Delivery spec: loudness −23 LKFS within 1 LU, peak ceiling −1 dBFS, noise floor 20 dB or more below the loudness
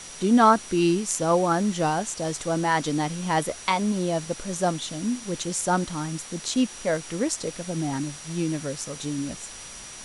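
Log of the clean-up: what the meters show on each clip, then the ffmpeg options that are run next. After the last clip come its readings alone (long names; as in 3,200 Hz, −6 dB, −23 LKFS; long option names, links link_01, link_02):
interfering tone 5,800 Hz; level of the tone −44 dBFS; background noise floor −41 dBFS; target noise floor −46 dBFS; integrated loudness −25.5 LKFS; sample peak −5.5 dBFS; target loudness −23.0 LKFS
→ -af "bandreject=frequency=5800:width=30"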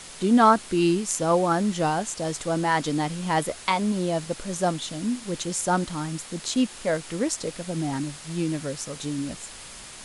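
interfering tone none found; background noise floor −42 dBFS; target noise floor −46 dBFS
→ -af "afftdn=noise_reduction=6:noise_floor=-42"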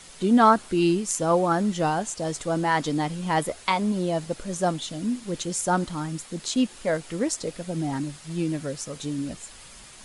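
background noise floor −47 dBFS; integrated loudness −25.5 LKFS; sample peak −5.5 dBFS; target loudness −23.0 LKFS
→ -af "volume=2.5dB"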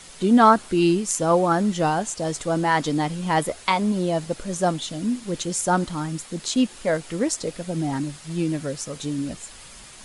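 integrated loudness −23.0 LKFS; sample peak −3.0 dBFS; background noise floor −44 dBFS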